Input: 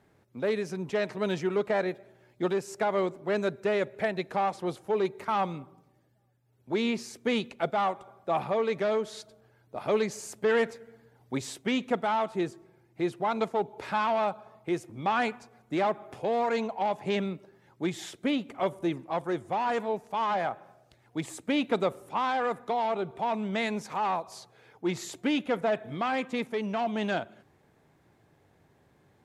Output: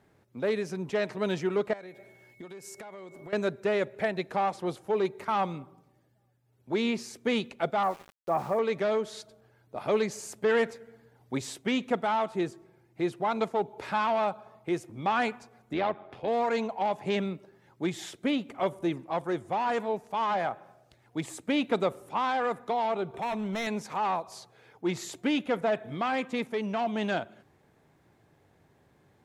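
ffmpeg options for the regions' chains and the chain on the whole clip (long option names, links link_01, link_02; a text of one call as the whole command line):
ffmpeg -i in.wav -filter_complex "[0:a]asettb=1/sr,asplit=3[link_01][link_02][link_03];[link_01]atrim=end=1.734[link_04];[link_02]atrim=start=1.73:end=3.33,asetpts=PTS-STARTPTS,afade=type=in:duration=0.004:curve=qsin,afade=type=out:start_time=1.596:duration=0.004:curve=qsin,highshelf=frequency=6500:gain=10,acompressor=threshold=-40dB:ratio=20:attack=3.2:release=140:knee=1:detection=peak,aeval=exprs='val(0)+0.00126*sin(2*PI*2200*n/s)':channel_layout=same[link_05];[link_03]atrim=start=3.326[link_06];[link_04][link_05]acrossfade=duration=0.004:curve1=hsin:curve2=qsin[link_07];[link_07][link_06]acrossfade=duration=0.004:curve1=qsin:curve2=hsin,asettb=1/sr,asplit=3[link_08][link_09][link_10];[link_08]atrim=end=7.834[link_11];[link_09]atrim=start=7.83:end=8.59,asetpts=PTS-STARTPTS,afade=type=in:duration=0.004:curve=qsin,afade=type=out:start_time=0.756:duration=0.004:curve=qsin,lowpass=frequency=1900:width=0.5412,lowpass=frequency=1900:width=1.3066,aeval=exprs='val(0)*gte(abs(val(0)),0.00562)':channel_layout=same[link_12];[link_10]atrim=start=8.586[link_13];[link_11][link_12]acrossfade=duration=0.004:curve1=hsin:curve2=qsin[link_14];[link_14][link_13]acrossfade=duration=0.004:curve1=qsin:curve2=hsin,asettb=1/sr,asplit=3[link_15][link_16][link_17];[link_15]atrim=end=15.734[link_18];[link_16]atrim=start=15.73:end=16.28,asetpts=PTS-STARTPTS,afade=type=in:duration=0.004:curve=qsin,afade=type=out:start_time=0.546:duration=0.004:curve=qsin,highshelf=frequency=5500:width_type=q:width=1.5:gain=-12,tremolo=f=90:d=0.519[link_19];[link_17]atrim=start=16.276[link_20];[link_18][link_19]acrossfade=duration=0.004:curve1=hsin:curve2=qsin[link_21];[link_21][link_20]acrossfade=duration=0.004:curve1=qsin:curve2=hsin,asettb=1/sr,asplit=3[link_22][link_23][link_24];[link_22]atrim=end=23.144[link_25];[link_23]atrim=start=23.14:end=23.67,asetpts=PTS-STARTPTS,afade=type=in:duration=0.004:curve=qsin,afade=type=out:start_time=0.526:duration=0.004:curve=qsin,acompressor=mode=upward:threshold=-35dB:ratio=2.5:attack=3.2:release=140:knee=2.83:detection=peak,asoftclip=type=hard:threshold=-28dB,asuperstop=centerf=4700:order=12:qfactor=7[link_26];[link_24]atrim=start=23.666[link_27];[link_25][link_26]acrossfade=duration=0.004:curve1=hsin:curve2=qsin[link_28];[link_28][link_27]acrossfade=duration=0.004:curve1=qsin:curve2=hsin" out.wav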